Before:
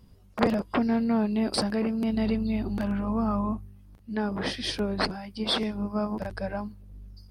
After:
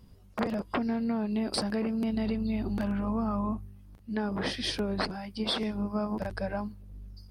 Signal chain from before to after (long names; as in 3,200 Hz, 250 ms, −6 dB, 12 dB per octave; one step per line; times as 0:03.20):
downward compressor 10 to 1, threshold −26 dBFS, peak gain reduction 10 dB